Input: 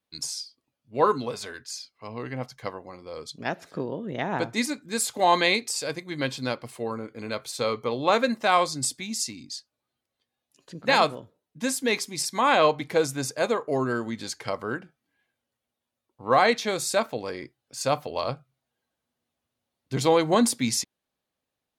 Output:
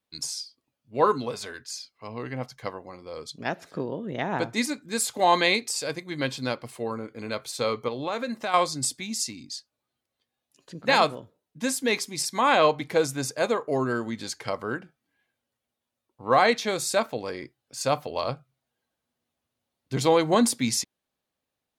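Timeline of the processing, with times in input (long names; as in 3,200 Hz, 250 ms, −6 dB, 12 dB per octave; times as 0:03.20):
0:07.88–0:08.54: downward compressor 2.5 to 1, threshold −29 dBFS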